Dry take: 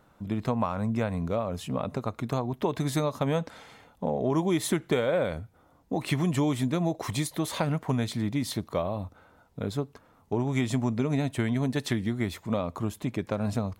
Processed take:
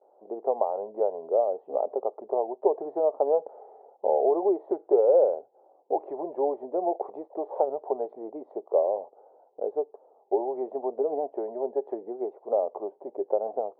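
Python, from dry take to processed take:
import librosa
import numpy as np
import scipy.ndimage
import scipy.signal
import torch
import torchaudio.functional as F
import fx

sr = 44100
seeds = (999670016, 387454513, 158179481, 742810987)

y = fx.vibrato(x, sr, rate_hz=0.75, depth_cents=95.0)
y = scipy.signal.sosfilt(scipy.signal.cheby1(3, 1.0, [390.0, 820.0], 'bandpass', fs=sr, output='sos'), y)
y = y * 10.0 ** (7.5 / 20.0)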